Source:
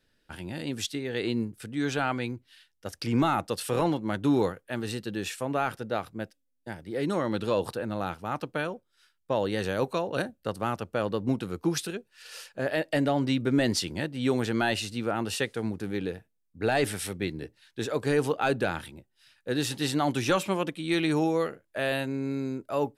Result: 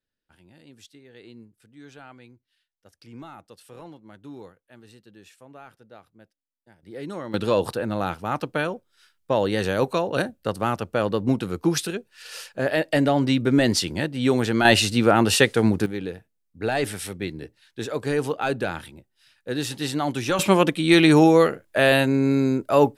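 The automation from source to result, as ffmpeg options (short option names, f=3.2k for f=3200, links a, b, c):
-af "asetnsamples=n=441:p=0,asendcmd='6.83 volume volume -5.5dB;7.34 volume volume 5.5dB;14.65 volume volume 12dB;15.86 volume volume 1dB;20.39 volume volume 11dB',volume=-17dB"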